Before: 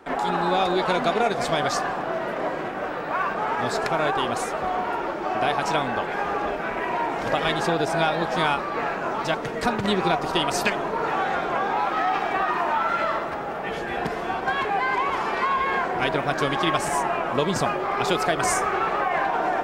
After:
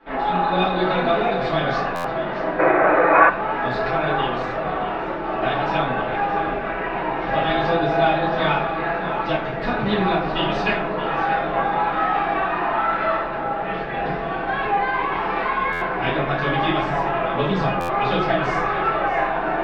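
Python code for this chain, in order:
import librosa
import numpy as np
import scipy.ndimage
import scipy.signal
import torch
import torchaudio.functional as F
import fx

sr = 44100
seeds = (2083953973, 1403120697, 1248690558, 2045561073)

y = scipy.signal.sosfilt(scipy.signal.butter(4, 3800.0, 'lowpass', fs=sr, output='sos'), x)
y = y + 0.3 * np.pad(y, (int(6.0 * sr / 1000.0), 0))[:len(y)]
y = y + 10.0 ** (-12.5 / 20.0) * np.pad(y, (int(625 * sr / 1000.0), 0))[:len(y)]
y = fx.room_shoebox(y, sr, seeds[0], volume_m3=67.0, walls='mixed', distance_m=2.3)
y = fx.spec_box(y, sr, start_s=2.6, length_s=0.69, low_hz=290.0, high_hz=2600.0, gain_db=12)
y = fx.buffer_glitch(y, sr, at_s=(1.95, 15.72, 17.8), block=512, repeats=7)
y = F.gain(torch.from_numpy(y), -9.0).numpy()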